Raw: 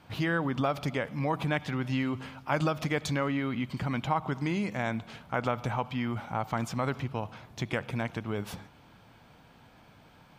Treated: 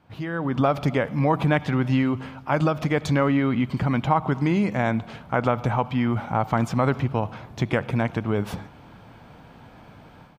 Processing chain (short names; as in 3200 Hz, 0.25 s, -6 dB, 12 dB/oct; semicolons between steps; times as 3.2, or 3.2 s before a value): AGC gain up to 13 dB; high shelf 2200 Hz -9 dB; speakerphone echo 0.23 s, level -29 dB; gain -2.5 dB